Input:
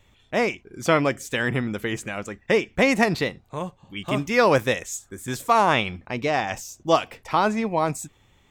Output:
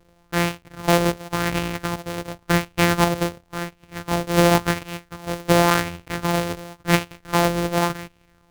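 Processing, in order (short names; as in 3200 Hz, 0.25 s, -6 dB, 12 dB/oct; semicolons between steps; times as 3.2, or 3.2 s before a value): sample sorter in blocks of 256 samples; LFO bell 0.92 Hz 440–2700 Hz +7 dB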